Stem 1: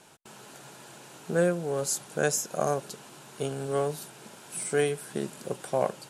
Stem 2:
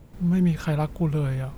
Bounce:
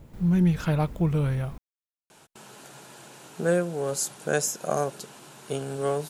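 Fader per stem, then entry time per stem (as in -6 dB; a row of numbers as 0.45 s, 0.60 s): +1.0 dB, 0.0 dB; 2.10 s, 0.00 s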